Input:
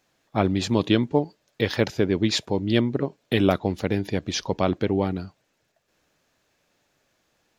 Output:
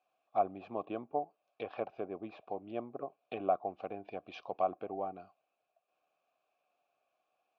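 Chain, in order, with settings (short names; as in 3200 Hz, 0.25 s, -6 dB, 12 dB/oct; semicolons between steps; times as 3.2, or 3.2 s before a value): treble ducked by the level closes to 1300 Hz, closed at -19.5 dBFS; vowel filter a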